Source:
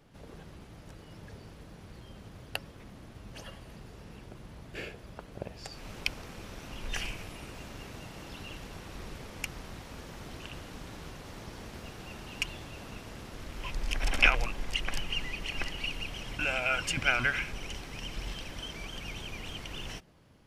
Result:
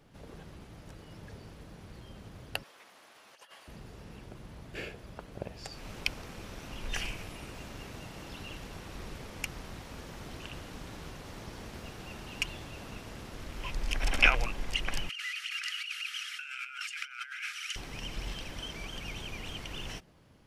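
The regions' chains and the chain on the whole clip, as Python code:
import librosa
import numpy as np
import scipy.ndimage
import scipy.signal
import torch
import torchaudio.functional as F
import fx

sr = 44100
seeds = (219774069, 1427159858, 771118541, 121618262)

y = fx.chain(x, sr, fx.highpass(hz=780.0, slope=12),
    fx.over_compress(threshold_db=-53.0, ratio=-0.5), at=(2.63, 3.68))
y = fx.chain(y, sr, fx.brickwall_bandpass(low_hz=1200.0, high_hz=13000.0),
    fx.over_compress(threshold_db=-40.0, ratio=-1.0), at=(15.09, 17.76))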